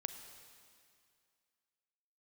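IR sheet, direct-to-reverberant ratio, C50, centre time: 8.0 dB, 8.5 dB, 29 ms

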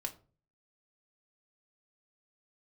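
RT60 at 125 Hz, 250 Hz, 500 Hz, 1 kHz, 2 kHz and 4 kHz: 0.65, 0.50, 0.45, 0.35, 0.25, 0.25 seconds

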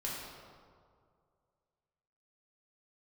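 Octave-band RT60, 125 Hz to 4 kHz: 2.4, 2.1, 2.3, 2.1, 1.4, 1.1 seconds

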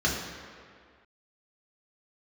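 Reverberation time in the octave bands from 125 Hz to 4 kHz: 1.6, 1.9, 2.0, 2.1, 2.0, 1.5 seconds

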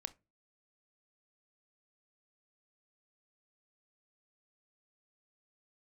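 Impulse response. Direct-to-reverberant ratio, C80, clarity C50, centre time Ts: 13.0 dB, 30.0 dB, 21.5 dB, 3 ms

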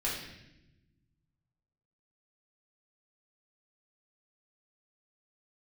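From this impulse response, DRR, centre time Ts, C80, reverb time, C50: −7.0 dB, 54 ms, 5.0 dB, 0.90 s, 2.0 dB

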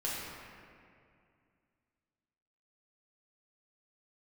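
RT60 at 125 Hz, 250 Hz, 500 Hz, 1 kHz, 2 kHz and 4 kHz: 2.8, 2.8, 2.4, 2.2, 2.1, 1.4 seconds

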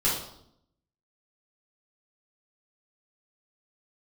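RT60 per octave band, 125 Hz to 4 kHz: 0.95, 0.95, 0.75, 0.70, 0.55, 0.60 seconds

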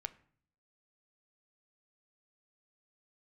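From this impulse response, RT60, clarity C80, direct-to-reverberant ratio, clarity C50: 0.55 s, 21.0 dB, 12.0 dB, 18.0 dB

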